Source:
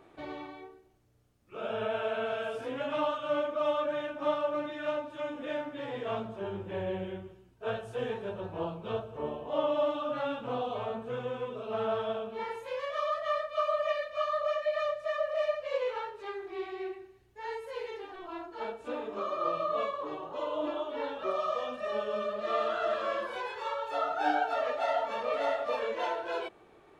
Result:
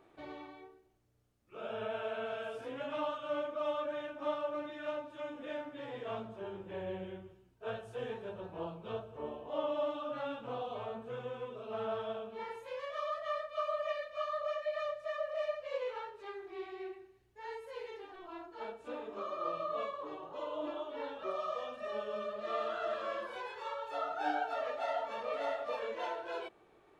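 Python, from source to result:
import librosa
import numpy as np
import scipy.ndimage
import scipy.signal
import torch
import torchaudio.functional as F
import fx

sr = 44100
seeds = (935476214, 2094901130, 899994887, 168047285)

y = fx.hum_notches(x, sr, base_hz=50, count=5)
y = y * librosa.db_to_amplitude(-6.0)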